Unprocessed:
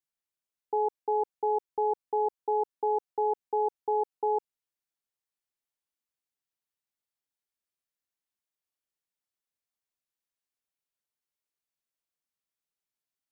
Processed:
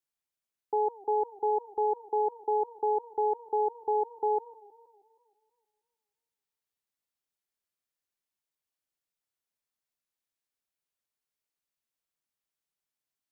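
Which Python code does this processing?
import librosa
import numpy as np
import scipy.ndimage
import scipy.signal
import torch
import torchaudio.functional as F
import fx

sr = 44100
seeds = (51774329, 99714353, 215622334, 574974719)

y = fx.echo_warbled(x, sr, ms=159, feedback_pct=59, rate_hz=2.8, cents=210, wet_db=-22.5)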